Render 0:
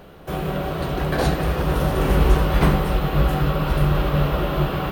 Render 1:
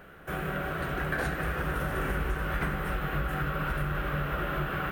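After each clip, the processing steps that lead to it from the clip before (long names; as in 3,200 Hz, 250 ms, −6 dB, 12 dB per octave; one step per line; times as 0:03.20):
drawn EQ curve 1,000 Hz 0 dB, 1,500 Hz +13 dB, 4,400 Hz −5 dB, 8,400 Hz +3 dB
downward compressor, threshold −18 dBFS, peak gain reduction 9 dB
level −8.5 dB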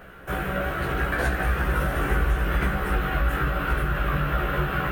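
multi-voice chorus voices 4, 0.41 Hz, delay 16 ms, depth 1.6 ms
level +8.5 dB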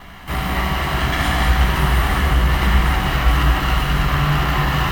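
lower of the sound and its delayed copy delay 1 ms
reversed playback
upward compression, threshold −36 dBFS
reversed playback
reverb whose tail is shaped and stops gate 250 ms flat, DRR −1.5 dB
level +5 dB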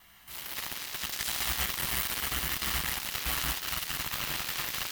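floating-point word with a short mantissa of 4 bits
harmonic generator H 7 −12 dB, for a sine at −4 dBFS
first-order pre-emphasis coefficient 0.9
level −4 dB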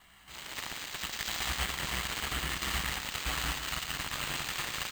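single-tap delay 115 ms −9.5 dB
bad sample-rate conversion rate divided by 4×, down filtered, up hold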